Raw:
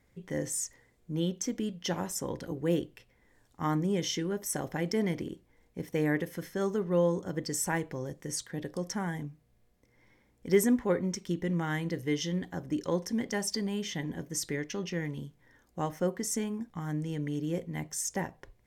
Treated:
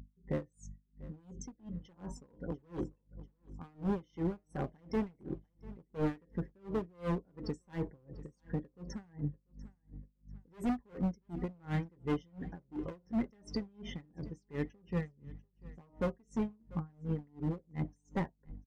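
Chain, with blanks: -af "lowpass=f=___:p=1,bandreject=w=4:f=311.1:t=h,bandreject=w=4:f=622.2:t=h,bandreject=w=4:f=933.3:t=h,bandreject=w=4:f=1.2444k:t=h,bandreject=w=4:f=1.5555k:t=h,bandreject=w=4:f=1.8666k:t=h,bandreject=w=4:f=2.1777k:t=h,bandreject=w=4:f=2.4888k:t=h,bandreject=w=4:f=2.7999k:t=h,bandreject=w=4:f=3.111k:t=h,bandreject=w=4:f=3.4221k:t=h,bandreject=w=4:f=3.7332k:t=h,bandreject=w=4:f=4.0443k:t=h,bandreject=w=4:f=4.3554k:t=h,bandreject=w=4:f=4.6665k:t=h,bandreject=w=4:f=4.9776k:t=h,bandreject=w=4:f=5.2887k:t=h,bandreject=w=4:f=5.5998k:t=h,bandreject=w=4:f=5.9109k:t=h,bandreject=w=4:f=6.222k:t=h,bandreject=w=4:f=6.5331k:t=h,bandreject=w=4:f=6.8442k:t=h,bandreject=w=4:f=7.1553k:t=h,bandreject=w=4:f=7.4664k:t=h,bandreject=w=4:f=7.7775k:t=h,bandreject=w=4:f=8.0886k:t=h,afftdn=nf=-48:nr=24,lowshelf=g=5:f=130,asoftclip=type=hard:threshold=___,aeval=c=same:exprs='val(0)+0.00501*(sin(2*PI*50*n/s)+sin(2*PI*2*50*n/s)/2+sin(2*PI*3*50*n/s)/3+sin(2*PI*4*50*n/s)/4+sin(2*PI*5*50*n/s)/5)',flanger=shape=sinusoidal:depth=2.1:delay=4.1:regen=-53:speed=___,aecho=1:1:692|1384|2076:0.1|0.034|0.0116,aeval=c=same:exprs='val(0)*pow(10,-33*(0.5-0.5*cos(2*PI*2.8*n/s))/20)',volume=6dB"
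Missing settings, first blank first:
1.3k, -29.5dB, 0.81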